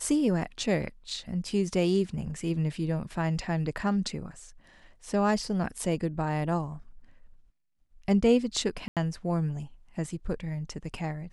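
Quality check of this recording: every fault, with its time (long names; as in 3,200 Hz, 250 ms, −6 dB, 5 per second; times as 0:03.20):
0:08.88–0:08.97: drop-out 87 ms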